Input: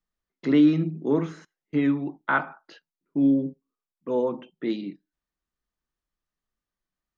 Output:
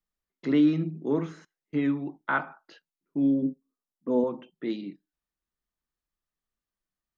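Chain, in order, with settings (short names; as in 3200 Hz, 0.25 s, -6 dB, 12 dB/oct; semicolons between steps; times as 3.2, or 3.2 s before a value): 3.42–4.24 fifteen-band EQ 250 Hz +9 dB, 630 Hz +3 dB, 2500 Hz -11 dB; gain -3.5 dB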